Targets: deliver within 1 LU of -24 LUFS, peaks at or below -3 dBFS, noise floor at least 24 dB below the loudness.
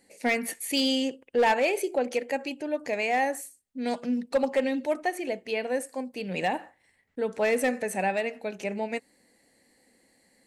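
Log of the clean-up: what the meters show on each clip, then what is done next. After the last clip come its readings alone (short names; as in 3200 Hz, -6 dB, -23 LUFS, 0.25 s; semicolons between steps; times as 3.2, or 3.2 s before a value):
clipped 0.3%; flat tops at -17.0 dBFS; loudness -28.5 LUFS; peak -17.0 dBFS; loudness target -24.0 LUFS
-> clip repair -17 dBFS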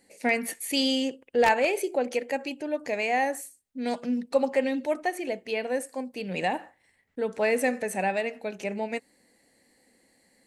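clipped 0.0%; loudness -28.0 LUFS; peak -8.0 dBFS; loudness target -24.0 LUFS
-> gain +4 dB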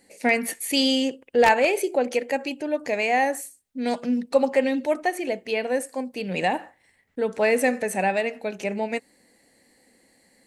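loudness -24.0 LUFS; peak -4.0 dBFS; noise floor -64 dBFS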